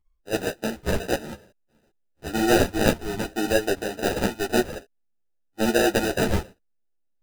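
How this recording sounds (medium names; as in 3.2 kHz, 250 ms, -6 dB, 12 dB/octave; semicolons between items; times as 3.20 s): phasing stages 6, 0.91 Hz, lowest notch 490–2700 Hz; aliases and images of a low sample rate 1.1 kHz, jitter 0%; a shimmering, thickened sound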